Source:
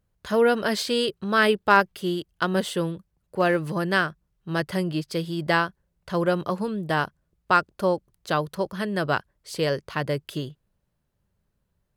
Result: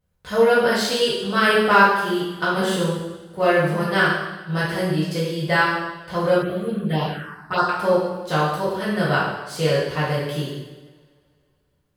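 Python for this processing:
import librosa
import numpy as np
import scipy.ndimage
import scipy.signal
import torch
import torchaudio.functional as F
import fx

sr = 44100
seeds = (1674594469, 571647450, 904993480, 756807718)

y = fx.rev_double_slope(x, sr, seeds[0], early_s=1.0, late_s=2.5, knee_db=-21, drr_db=-9.5)
y = fx.env_phaser(y, sr, low_hz=460.0, high_hz=2400.0, full_db=-7.0, at=(6.42, 7.69))
y = F.gain(torch.from_numpy(y), -5.0).numpy()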